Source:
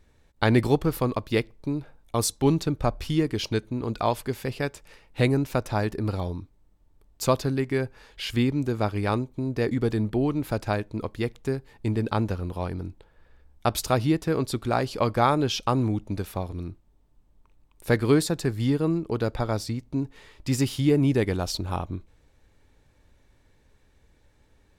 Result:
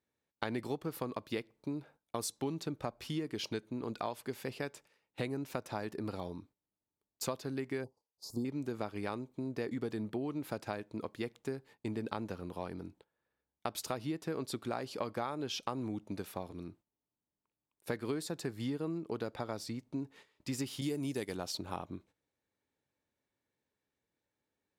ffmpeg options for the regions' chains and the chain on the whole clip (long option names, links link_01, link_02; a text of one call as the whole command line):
ffmpeg -i in.wav -filter_complex "[0:a]asettb=1/sr,asplit=3[link_01][link_02][link_03];[link_01]atrim=end=7.844[link_04];[link_02]atrim=start=7.84:end=8.45,asetpts=PTS-STARTPTS,afade=type=in:duration=0.004:curve=qsin,afade=type=out:start_time=0.606:duration=0.004:curve=qsin,asuperstop=centerf=2200:order=12:qfactor=0.63,agate=range=-33dB:threshold=-42dB:ratio=3:release=100:detection=peak[link_05];[link_03]atrim=start=8.446[link_06];[link_04][link_05]acrossfade=duration=0.004:curve1=hsin:curve2=qsin[link_07];[link_07][link_06]acrossfade=duration=0.004:curve1=qsin:curve2=hsin,asettb=1/sr,asplit=3[link_08][link_09][link_10];[link_08]atrim=end=20.814[link_11];[link_09]atrim=start=20.81:end=21.35,asetpts=PTS-STARTPTS,afade=type=in:duration=0.004:curve=qsin,afade=type=out:start_time=0.536:duration=0.004:curve=qsin,agate=range=-33dB:threshold=-25dB:ratio=3:release=100:detection=peak,bass=frequency=250:gain=0,treble=frequency=4000:gain=14[link_12];[link_10]atrim=start=21.346[link_13];[link_11][link_12]acrossfade=duration=0.004:curve1=hsin:curve2=qsin[link_14];[link_14][link_13]acrossfade=duration=0.004:curve1=qsin:curve2=hsin,agate=range=-14dB:threshold=-46dB:ratio=16:detection=peak,highpass=170,acompressor=threshold=-26dB:ratio=6,volume=-7dB" out.wav